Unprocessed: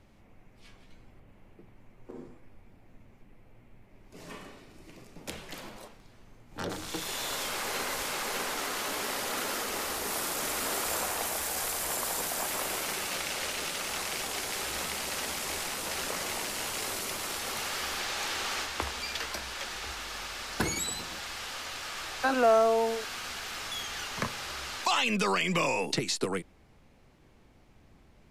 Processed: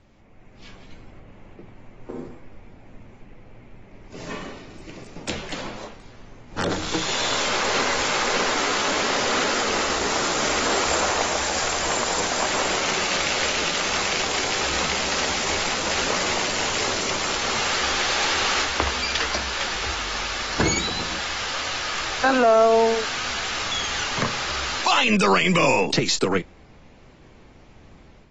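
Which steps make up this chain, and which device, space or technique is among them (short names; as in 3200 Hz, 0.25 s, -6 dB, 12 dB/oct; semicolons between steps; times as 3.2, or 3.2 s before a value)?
low-bitrate web radio (AGC gain up to 7.5 dB; limiter -12 dBFS, peak gain reduction 5 dB; gain +2.5 dB; AAC 24 kbps 32000 Hz)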